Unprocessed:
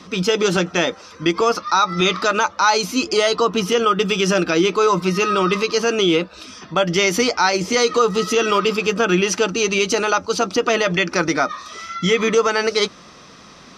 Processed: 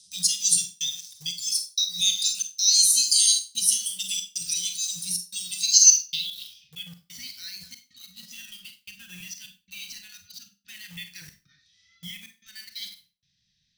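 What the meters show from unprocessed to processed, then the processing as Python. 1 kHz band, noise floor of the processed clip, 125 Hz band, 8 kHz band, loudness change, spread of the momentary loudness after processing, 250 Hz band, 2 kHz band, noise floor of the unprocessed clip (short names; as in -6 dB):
under -40 dB, -73 dBFS, -24.0 dB, +7.0 dB, -2.5 dB, 24 LU, under -30 dB, -23.0 dB, -43 dBFS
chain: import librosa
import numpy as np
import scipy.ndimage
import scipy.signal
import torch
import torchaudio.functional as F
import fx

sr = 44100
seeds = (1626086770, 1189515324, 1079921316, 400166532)

p1 = fx.reverse_delay(x, sr, ms=126, wet_db=-9)
p2 = scipy.signal.sosfilt(scipy.signal.ellip(3, 1.0, 60, [140.0, 3700.0], 'bandstop', fs=sr, output='sos'), p1)
p3 = fx.noise_reduce_blind(p2, sr, reduce_db=8)
p4 = fx.high_shelf(p3, sr, hz=3200.0, db=9.0)
p5 = fx.filter_sweep_lowpass(p4, sr, from_hz=9400.0, to_hz=1700.0, start_s=5.53, end_s=6.97, q=5.8)
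p6 = fx.step_gate(p5, sr, bpm=93, pattern='xxxx.xxxxx.', floor_db=-60.0, edge_ms=4.5)
p7 = fx.quant_dither(p6, sr, seeds[0], bits=6, dither='none')
p8 = p6 + F.gain(torch.from_numpy(p7), -6.5).numpy()
p9 = scipy.signal.lfilter([1.0, -0.8], [1.0], p8)
p10 = fx.rev_schroeder(p9, sr, rt60_s=0.3, comb_ms=31, drr_db=6.5)
y = F.gain(torch.from_numpy(p10), -2.0).numpy()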